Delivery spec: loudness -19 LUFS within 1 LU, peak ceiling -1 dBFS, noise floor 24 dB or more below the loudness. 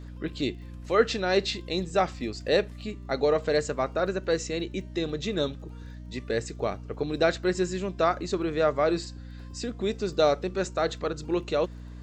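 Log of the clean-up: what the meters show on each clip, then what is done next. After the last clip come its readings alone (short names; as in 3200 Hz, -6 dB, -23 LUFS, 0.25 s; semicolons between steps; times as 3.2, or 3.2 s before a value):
ticks 22/s; hum 60 Hz; harmonics up to 300 Hz; hum level -39 dBFS; loudness -28.0 LUFS; peak -8.5 dBFS; loudness target -19.0 LUFS
-> de-click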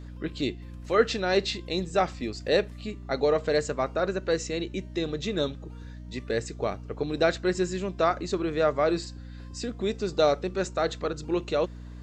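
ticks 0/s; hum 60 Hz; harmonics up to 300 Hz; hum level -39 dBFS
-> de-hum 60 Hz, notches 5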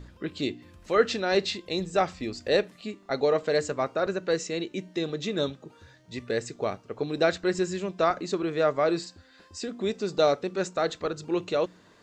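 hum none; loudness -28.0 LUFS; peak -8.5 dBFS; loudness target -19.0 LUFS
-> gain +9 dB; limiter -1 dBFS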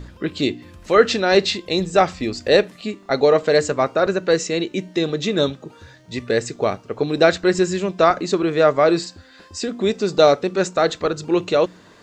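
loudness -19.0 LUFS; peak -1.0 dBFS; noise floor -48 dBFS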